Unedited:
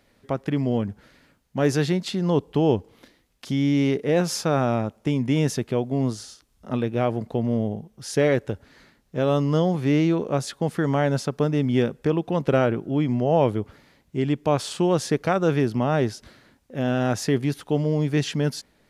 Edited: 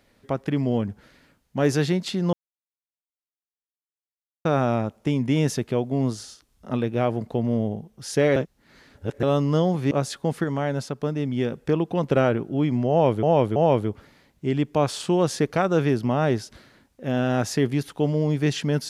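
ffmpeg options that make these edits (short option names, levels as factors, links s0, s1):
-filter_complex "[0:a]asplit=10[s0][s1][s2][s3][s4][s5][s6][s7][s8][s9];[s0]atrim=end=2.33,asetpts=PTS-STARTPTS,afade=t=out:st=2.326:d=0.004:c=hsin[s10];[s1]atrim=start=2.33:end=4.45,asetpts=PTS-STARTPTS,volume=0[s11];[s2]atrim=start=4.45:end=8.362,asetpts=PTS-STARTPTS,afade=t=in:d=0.004:c=hsin[s12];[s3]atrim=start=8.358:end=9.232,asetpts=PTS-STARTPTS,areverse[s13];[s4]atrim=start=9.228:end=9.912[s14];[s5]atrim=start=10.278:end=10.812[s15];[s6]atrim=start=10.808:end=11.892,asetpts=PTS-STARTPTS,volume=0.631[s16];[s7]atrim=start=11.888:end=13.602[s17];[s8]atrim=start=13.268:end=13.602[s18];[s9]atrim=start=13.268[s19];[s10][s11][s12]concat=n=3:v=0:a=1[s20];[s20][s13]acrossfade=d=0.004:c1=hsin:c2=hsin[s21];[s21][s14]acrossfade=d=0.004:c1=hsin:c2=hsin[s22];[s22][s15]acrossfade=d=0.004:c1=hsin:c2=hsin[s23];[s23][s16]acrossfade=d=0.004:c1=hsin:c2=hsin[s24];[s24][s17]acrossfade=d=0.004:c1=hsin:c2=hsin[s25];[s25][s18]acrossfade=d=0.004:c1=hsin:c2=hsin[s26];[s26][s19]acrossfade=d=0.004:c1=hsin:c2=hsin"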